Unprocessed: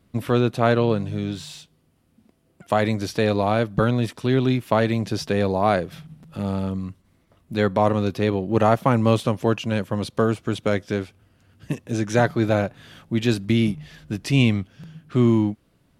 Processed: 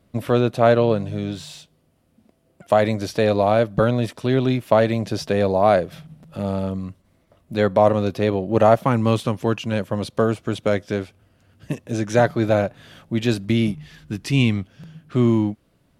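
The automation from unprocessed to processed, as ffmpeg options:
ffmpeg -i in.wav -af "asetnsamples=nb_out_samples=441:pad=0,asendcmd='8.85 equalizer g -2.5;9.73 equalizer g 4.5;13.74 equalizer g -5.5;14.57 equalizer g 3',equalizer=frequency=600:width_type=o:width=0.53:gain=7" out.wav

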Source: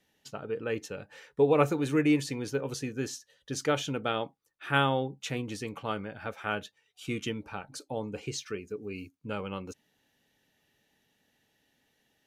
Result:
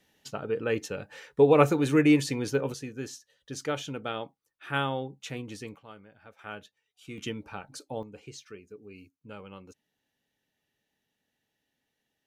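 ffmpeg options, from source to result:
ffmpeg -i in.wav -af "asetnsamples=nb_out_samples=441:pad=0,asendcmd='2.72 volume volume -3.5dB;5.76 volume volume -15dB;6.39 volume volume -8.5dB;7.18 volume volume -1dB;8.03 volume volume -9dB',volume=4dB" out.wav

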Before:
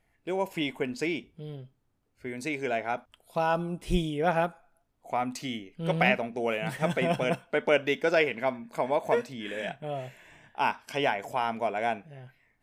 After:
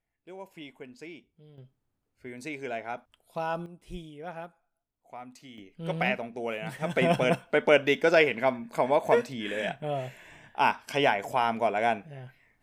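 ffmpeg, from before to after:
ffmpeg -i in.wav -af "asetnsamples=nb_out_samples=441:pad=0,asendcmd='1.58 volume volume -5dB;3.66 volume volume -14dB;5.58 volume volume -4dB;6.96 volume volume 3dB',volume=-14dB" out.wav

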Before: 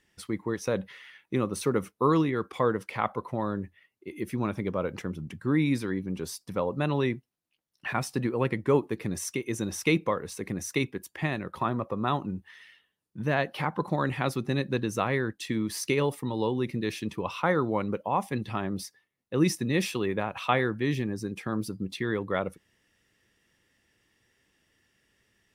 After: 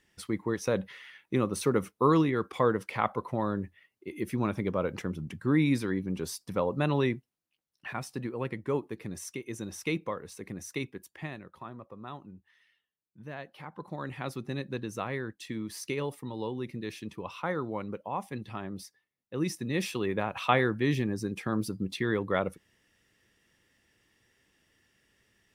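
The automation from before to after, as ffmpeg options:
ffmpeg -i in.wav -af "volume=15.5dB,afade=type=out:start_time=6.99:duration=0.95:silence=0.446684,afade=type=out:start_time=11.03:duration=0.56:silence=0.398107,afade=type=in:start_time=13.64:duration=0.73:silence=0.398107,afade=type=in:start_time=19.48:duration=0.96:silence=0.421697" out.wav

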